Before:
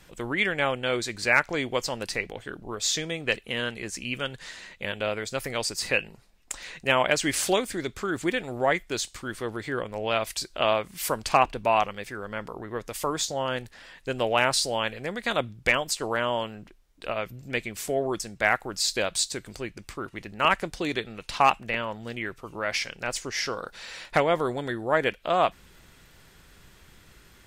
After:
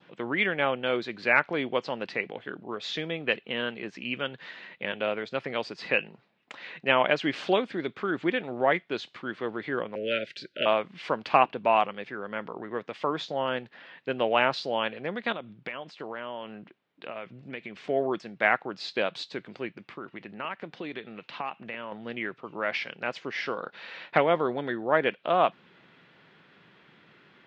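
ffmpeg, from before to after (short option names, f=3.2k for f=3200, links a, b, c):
-filter_complex "[0:a]asettb=1/sr,asplit=3[a][b][c];[a]atrim=end=9.954[d];[b]atrim=start=9.95:end=10.66,asetpts=PTS-STARTPTS,afade=t=in:d=0.004:c=qsin,afade=t=out:st=0.706:d=0.004:c=qsin,asuperstop=centerf=930:order=20:qfactor=1.2[e];[c]atrim=start=10.656[f];[d][e]acrossfade=d=0.004:c1=hsin:c2=qsin[g];[g][f]acrossfade=d=0.004:c1=qsin:c2=hsin,asettb=1/sr,asplit=3[h][i][j];[h]atrim=end=15.324[k];[i]atrim=start=15.32:end=17.84,asetpts=PTS-STARTPTS,afade=t=in:d=0.004:c=qsin,afade=t=out:st=2.516:d=0.004:c=qsin,acompressor=threshold=-34dB:ratio=4:attack=3.2:release=140:knee=1:detection=peak[l];[j]atrim=start=17.836[m];[k][l]acrossfade=d=0.004:c1=hsin:c2=qsin[n];[n][m]acrossfade=d=0.004:c1=qsin:c2=hsin,asettb=1/sr,asplit=3[o][p][q];[o]atrim=end=19.744[r];[p]atrim=start=19.74:end=21.92,asetpts=PTS-STARTPTS,afade=t=in:d=0.004:c=qsin,afade=t=out:st=2.176:d=0.004:c=qsin,acompressor=threshold=-36dB:ratio=2.5:attack=3.2:release=140:knee=1:detection=peak[s];[q]atrim=start=21.916[t];[r][s]acrossfade=d=0.004:c1=hsin:c2=qsin[u];[u][t]acrossfade=d=0.004:c1=qsin:c2=hsin,highpass=f=150:w=0.5412,highpass=f=150:w=1.3066,adynamicequalizer=threshold=0.00794:dfrequency=2000:dqfactor=2.4:tfrequency=2000:tqfactor=2.4:attack=5:release=100:ratio=0.375:range=3:mode=cutabove:tftype=bell,lowpass=f=3.4k:w=0.5412,lowpass=f=3.4k:w=1.3066"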